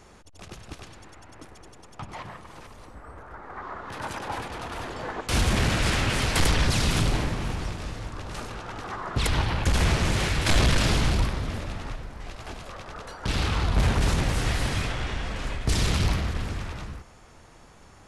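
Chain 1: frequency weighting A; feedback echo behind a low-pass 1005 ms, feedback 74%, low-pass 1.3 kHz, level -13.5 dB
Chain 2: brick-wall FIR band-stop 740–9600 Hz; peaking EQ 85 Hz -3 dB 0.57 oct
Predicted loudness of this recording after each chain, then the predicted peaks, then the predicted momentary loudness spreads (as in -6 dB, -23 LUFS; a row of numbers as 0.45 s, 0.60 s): -30.0 LUFS, -29.5 LUFS; -11.0 dBFS, -14.0 dBFS; 22 LU, 20 LU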